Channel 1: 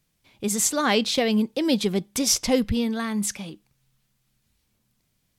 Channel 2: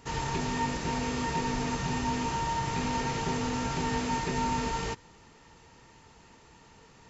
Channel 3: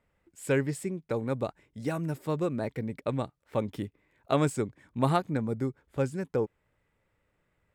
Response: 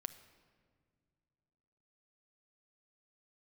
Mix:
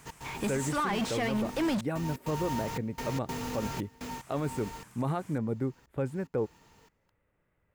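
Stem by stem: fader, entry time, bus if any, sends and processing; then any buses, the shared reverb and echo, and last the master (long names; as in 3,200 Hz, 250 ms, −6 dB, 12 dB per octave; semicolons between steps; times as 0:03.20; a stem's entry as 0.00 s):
−0.5 dB, 0.00 s, muted 0:01.81–0:04.14, no send, graphic EQ with 10 bands 250 Hz −3 dB, 500 Hz −11 dB, 1,000 Hz +5 dB, 4,000 Hz −10 dB, 8,000 Hz +10 dB; downward compressor, threshold −21 dBFS, peak gain reduction 9 dB; mid-hump overdrive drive 34 dB, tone 1,300 Hz, clips at −21.5 dBFS
−5.0 dB, 0.00 s, no send, noise that follows the level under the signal 14 dB; gate pattern "x.xxxxx..x" 146 BPM −24 dB; automatic ducking −7 dB, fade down 0.30 s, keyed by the first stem
−0.5 dB, 0.00 s, no send, parametric band 5,700 Hz −11 dB 1.6 octaves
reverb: not used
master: brickwall limiter −22 dBFS, peak gain reduction 8.5 dB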